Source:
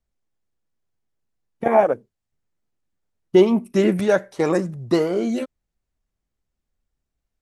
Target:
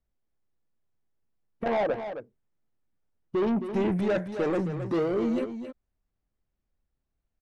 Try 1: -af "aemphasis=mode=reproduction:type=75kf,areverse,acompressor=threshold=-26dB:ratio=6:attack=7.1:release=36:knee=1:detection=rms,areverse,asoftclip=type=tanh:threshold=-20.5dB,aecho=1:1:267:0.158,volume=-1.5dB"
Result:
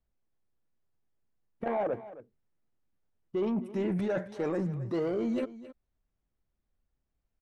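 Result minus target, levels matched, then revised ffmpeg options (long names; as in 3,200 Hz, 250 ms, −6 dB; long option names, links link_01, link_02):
downward compressor: peak gain reduction +8.5 dB; echo-to-direct −6.5 dB
-af "aemphasis=mode=reproduction:type=75kf,areverse,acompressor=threshold=-16dB:ratio=6:attack=7.1:release=36:knee=1:detection=rms,areverse,asoftclip=type=tanh:threshold=-20.5dB,aecho=1:1:267:0.335,volume=-1.5dB"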